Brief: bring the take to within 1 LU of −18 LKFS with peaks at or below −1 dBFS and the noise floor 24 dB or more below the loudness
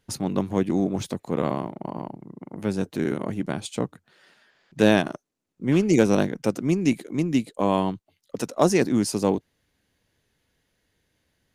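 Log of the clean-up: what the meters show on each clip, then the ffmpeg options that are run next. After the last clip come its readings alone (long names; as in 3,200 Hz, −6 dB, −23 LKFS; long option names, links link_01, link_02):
integrated loudness −24.5 LKFS; sample peak −5.0 dBFS; target loudness −18.0 LKFS
→ -af "volume=6.5dB,alimiter=limit=-1dB:level=0:latency=1"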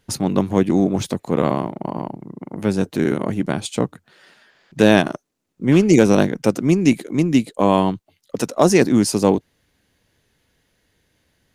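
integrated loudness −18.5 LKFS; sample peak −1.0 dBFS; background noise floor −67 dBFS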